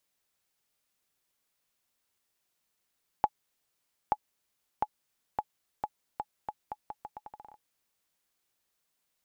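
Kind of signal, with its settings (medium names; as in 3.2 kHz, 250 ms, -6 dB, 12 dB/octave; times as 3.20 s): bouncing ball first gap 0.88 s, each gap 0.8, 845 Hz, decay 49 ms -12 dBFS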